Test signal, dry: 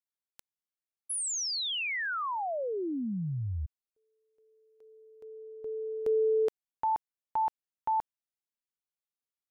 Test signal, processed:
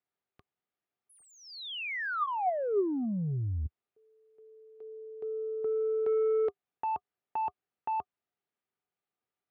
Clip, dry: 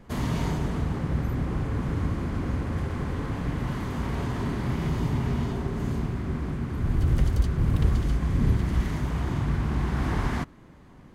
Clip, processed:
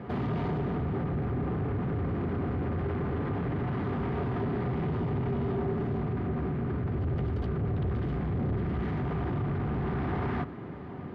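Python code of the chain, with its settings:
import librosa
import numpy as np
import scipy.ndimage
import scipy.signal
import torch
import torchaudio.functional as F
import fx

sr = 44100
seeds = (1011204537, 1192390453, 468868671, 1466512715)

p1 = scipy.signal.sosfilt(scipy.signal.butter(4, 78.0, 'highpass', fs=sr, output='sos'), x)
p2 = fx.notch(p1, sr, hz=1100.0, q=17.0)
p3 = fx.over_compress(p2, sr, threshold_db=-39.0, ratio=-1.0)
p4 = p2 + (p3 * 10.0 ** (-1.5 / 20.0))
p5 = 10.0 ** (-26.0 / 20.0) * np.tanh(p4 / 10.0 ** (-26.0 / 20.0))
p6 = fx.air_absorb(p5, sr, metres=390.0)
y = fx.small_body(p6, sr, hz=(400.0, 730.0, 1200.0), ring_ms=60, db=8)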